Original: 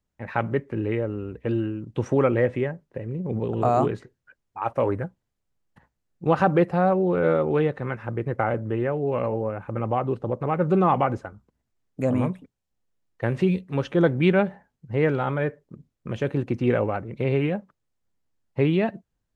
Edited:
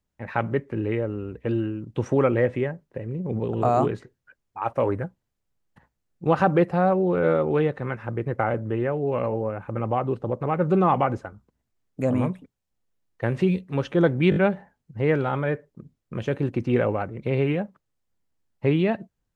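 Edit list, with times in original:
0:14.30: stutter 0.02 s, 4 plays

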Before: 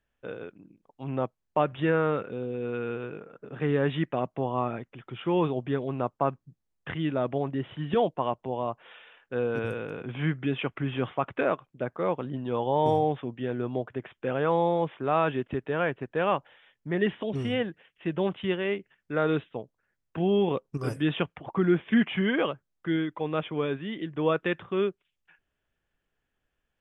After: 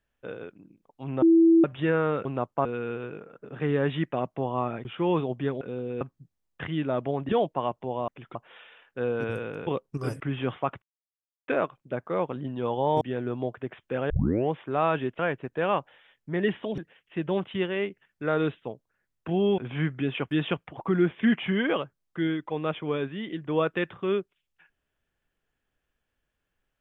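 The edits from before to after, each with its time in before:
0:01.22–0:01.64: beep over 330 Hz −14 dBFS
0:02.25–0:02.65: swap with 0:05.88–0:06.28
0:04.85–0:05.12: move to 0:08.70
0:07.56–0:07.91: remove
0:10.02–0:10.75: swap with 0:20.47–0:21.00
0:11.37: splice in silence 0.66 s
0:12.90–0:13.34: remove
0:14.43: tape start 0.42 s
0:15.52–0:15.77: remove
0:17.36–0:17.67: remove

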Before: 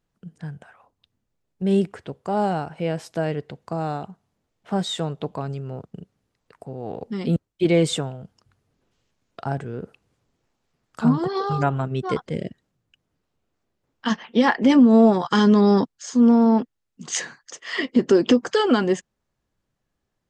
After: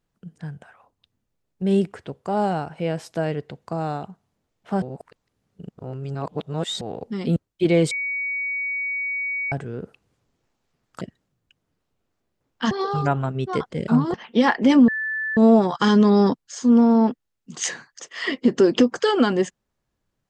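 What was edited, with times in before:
0:04.82–0:06.81: reverse
0:07.91–0:09.52: beep over 2,250 Hz −23.5 dBFS
0:11.01–0:11.27: swap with 0:12.44–0:14.14
0:14.88: insert tone 1,750 Hz −23.5 dBFS 0.49 s

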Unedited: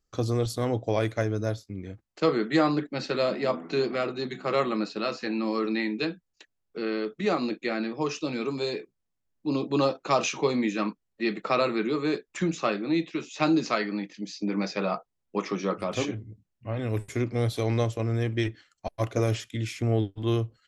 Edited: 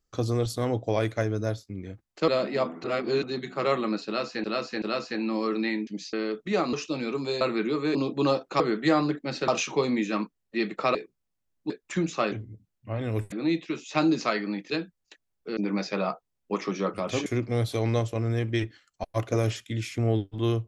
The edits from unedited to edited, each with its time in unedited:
0:02.28–0:03.16: move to 0:10.14
0:03.72–0:04.11: reverse
0:04.94–0:05.32: repeat, 3 plays
0:05.99–0:06.86: swap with 0:14.15–0:14.41
0:07.46–0:08.06: remove
0:08.74–0:09.49: swap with 0:11.61–0:12.15
0:16.10–0:17.10: move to 0:12.77

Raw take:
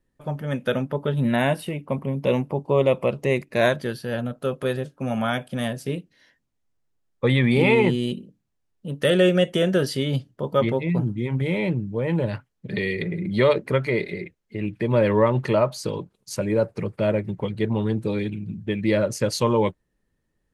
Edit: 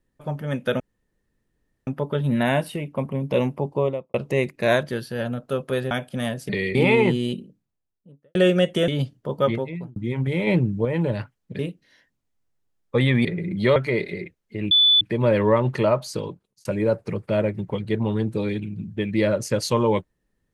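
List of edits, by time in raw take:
0:00.80: splice in room tone 1.07 s
0:02.61–0:03.07: fade out and dull
0:04.84–0:05.30: remove
0:05.88–0:07.54: swap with 0:12.73–0:12.99
0:08.08–0:09.14: fade out and dull
0:09.67–0:10.02: remove
0:10.57–0:11.10: fade out
0:11.61–0:11.99: clip gain +4.5 dB
0:13.50–0:13.76: remove
0:14.71: insert tone 3,480 Hz −12.5 dBFS 0.30 s
0:15.70–0:16.35: fade out equal-power

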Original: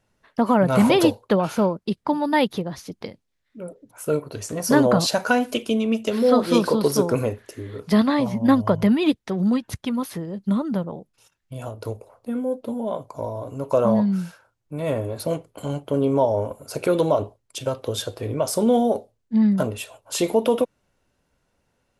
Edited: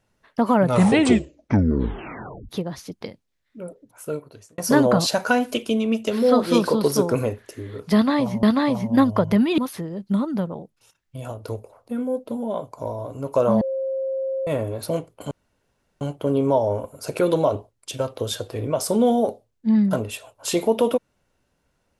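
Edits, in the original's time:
0:00.63: tape stop 1.86 s
0:03.66–0:04.58: fade out
0:07.94–0:08.43: repeat, 2 plays
0:09.09–0:09.95: remove
0:13.98–0:14.84: beep over 533 Hz −22.5 dBFS
0:15.68: splice in room tone 0.70 s

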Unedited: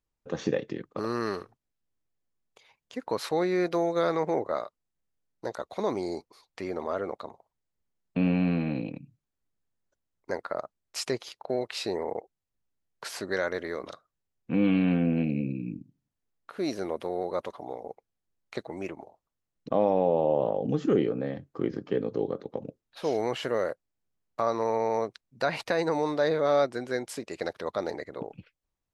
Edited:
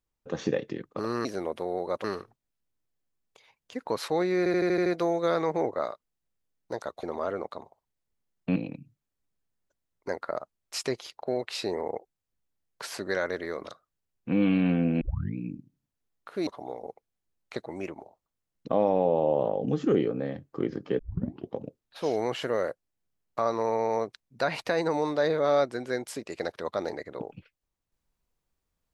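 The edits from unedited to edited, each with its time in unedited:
0:03.59: stutter 0.08 s, 7 plays
0:05.76–0:06.71: remove
0:08.24–0:08.78: remove
0:15.23: tape start 0.36 s
0:16.69–0:17.48: move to 0:01.25
0:22.00: tape start 0.55 s

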